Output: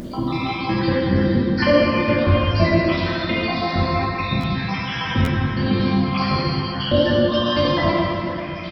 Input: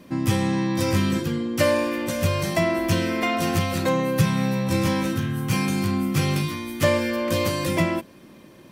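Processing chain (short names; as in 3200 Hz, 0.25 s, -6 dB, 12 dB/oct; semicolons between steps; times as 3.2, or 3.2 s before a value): random spectral dropouts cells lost 77%; low shelf 99 Hz +6.5 dB; notch 2700 Hz, Q 26; in parallel at -1 dB: compressor 6:1, threshold -34 dBFS, peak gain reduction 15 dB; on the sum: downsampling 11025 Hz; upward compressor, threshold -28 dBFS; on a send: feedback echo 0.118 s, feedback 50%, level -13 dB; on the sum: plate-style reverb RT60 3.2 s, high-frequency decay 0.7×, DRR -7 dB; harmoniser -12 st -12 dB; stuck buffer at 4.4/5.24, samples 512, times 2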